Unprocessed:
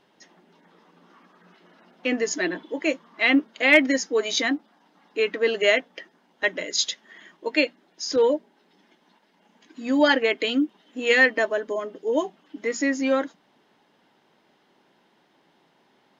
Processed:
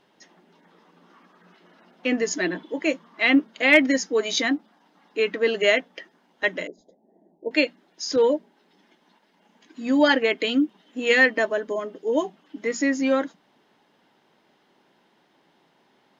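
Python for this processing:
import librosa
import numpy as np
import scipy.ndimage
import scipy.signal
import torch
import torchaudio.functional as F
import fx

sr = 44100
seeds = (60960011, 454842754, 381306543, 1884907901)

y = fx.ellip_lowpass(x, sr, hz=780.0, order=4, stop_db=40, at=(6.67, 7.51))
y = fx.dynamic_eq(y, sr, hz=180.0, q=1.7, threshold_db=-43.0, ratio=4.0, max_db=5)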